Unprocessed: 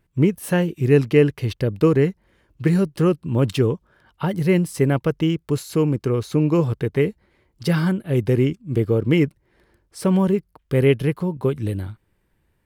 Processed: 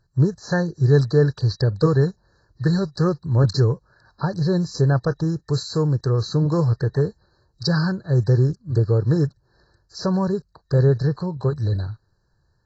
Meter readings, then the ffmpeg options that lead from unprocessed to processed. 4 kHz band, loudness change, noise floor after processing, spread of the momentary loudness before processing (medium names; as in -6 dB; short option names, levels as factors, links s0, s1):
+2.0 dB, -0.5 dB, -66 dBFS, 7 LU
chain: -af "afftfilt=real='re*(1-between(b*sr/4096,1800,3900))':imag='im*(1-between(b*sr/4096,1800,3900))':win_size=4096:overlap=0.75,equalizer=f=125:t=o:w=1:g=7,equalizer=f=250:t=o:w=1:g=-11,equalizer=f=4000:t=o:w=1:g=11" -ar 22050 -c:a aac -b:a 24k